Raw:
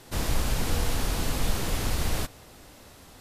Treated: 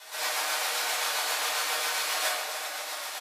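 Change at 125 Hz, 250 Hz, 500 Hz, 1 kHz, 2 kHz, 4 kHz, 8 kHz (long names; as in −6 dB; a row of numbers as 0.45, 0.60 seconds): below −40 dB, −22.0 dB, −1.5 dB, +5.5 dB, +8.0 dB, +6.5 dB, +5.0 dB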